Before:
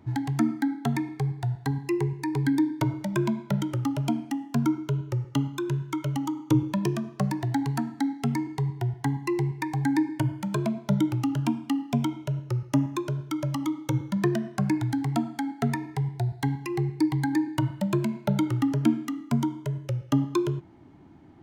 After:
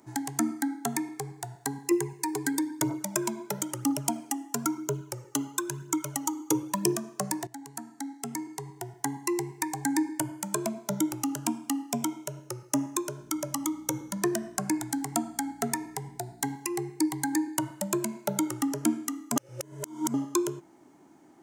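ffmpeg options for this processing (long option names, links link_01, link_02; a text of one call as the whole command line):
ffmpeg -i in.wav -filter_complex "[0:a]asettb=1/sr,asplit=3[link_01][link_02][link_03];[link_01]atrim=end=1.914[link_04];[link_02]atrim=start=1.91:end=6.96,asetpts=PTS-STARTPTS,afade=type=in:duration=0.004:curve=qsin,afade=type=out:start_time=5.046:duration=0.004:curve=qsin,aphaser=in_gain=1:out_gain=1:delay=3:decay=0.5:speed=1:type=triangular[link_05];[link_03]atrim=start=6.956[link_06];[link_04][link_05]acrossfade=duration=0.004:curve1=hsin:curve2=qsin[link_07];[link_07][link_06]acrossfade=duration=0.004:curve1=qsin:curve2=hsin,asettb=1/sr,asplit=3[link_08][link_09][link_10];[link_08]atrim=end=13.214[link_11];[link_09]atrim=start=13.21:end=16.54,asetpts=PTS-STARTPTS,afade=type=in:duration=0.004:curve=qsin,afade=type=out:start_time=3.326:duration=0.004:curve=qsin,aeval=exprs='val(0)+0.0112*(sin(2*PI*60*n/s)+sin(2*PI*2*60*n/s)/2+sin(2*PI*3*60*n/s)/3+sin(2*PI*4*60*n/s)/4+sin(2*PI*5*60*n/s)/5)':channel_layout=same[link_12];[link_10]atrim=start=16.536[link_13];[link_11][link_12]acrossfade=duration=0.004:curve1=hsin:curve2=qsin[link_14];[link_14][link_13]acrossfade=duration=0.004:curve1=qsin:curve2=hsin,asplit=4[link_15][link_16][link_17][link_18];[link_15]atrim=end=7.47,asetpts=PTS-STARTPTS,afade=type=out:start_time=7.466:duration=0.004:curve=hsin:silence=0.16788[link_19];[link_16]atrim=start=7.47:end=19.362,asetpts=PTS-STARTPTS,afade=type=in:duration=1.68:silence=0.16788[link_20];[link_17]atrim=start=19.358:end=20.142,asetpts=PTS-STARTPTS,areverse[link_21];[link_18]atrim=start=20.138[link_22];[link_19][link_20]concat=n=2:v=0:a=1[link_23];[link_23][link_21]acrossfade=duration=0.004:curve1=hsin:curve2=hsin[link_24];[link_24][link_22]acrossfade=duration=0.004:curve1=hsin:curve2=hsin,highpass=310,highshelf=frequency=5100:width_type=q:width=1.5:gain=12.5" out.wav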